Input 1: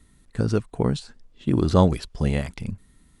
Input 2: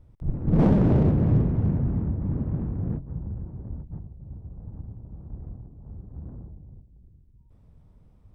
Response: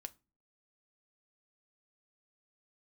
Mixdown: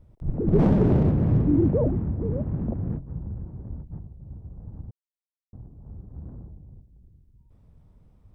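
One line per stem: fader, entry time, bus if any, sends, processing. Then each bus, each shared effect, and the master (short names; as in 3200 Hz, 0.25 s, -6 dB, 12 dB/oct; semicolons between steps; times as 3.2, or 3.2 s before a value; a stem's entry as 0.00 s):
-4.5 dB, 0.00 s, no send, sine-wave speech; steep low-pass 700 Hz
-0.5 dB, 0.00 s, muted 4.91–5.53, no send, dry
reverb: off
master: dry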